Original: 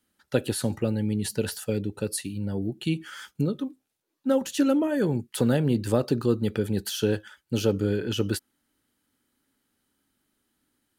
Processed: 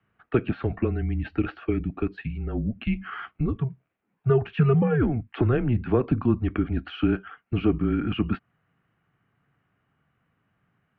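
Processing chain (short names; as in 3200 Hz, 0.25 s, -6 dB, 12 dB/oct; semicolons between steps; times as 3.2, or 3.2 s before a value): in parallel at +2 dB: compressor, threshold -30 dBFS, peak gain reduction 12.5 dB; on the sum: mistuned SSB -130 Hz 210–2600 Hz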